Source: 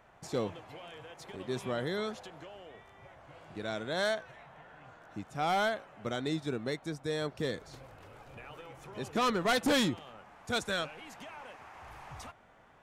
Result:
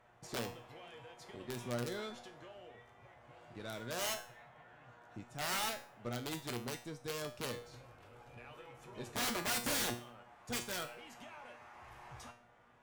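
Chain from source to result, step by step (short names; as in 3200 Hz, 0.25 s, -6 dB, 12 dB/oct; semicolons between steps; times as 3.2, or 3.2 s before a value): wrapped overs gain 25 dB; added harmonics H 3 -23 dB, 5 -22 dB, 6 -22 dB, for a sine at -25 dBFS; resonator 120 Hz, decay 0.41 s, harmonics all, mix 80%; gain +2.5 dB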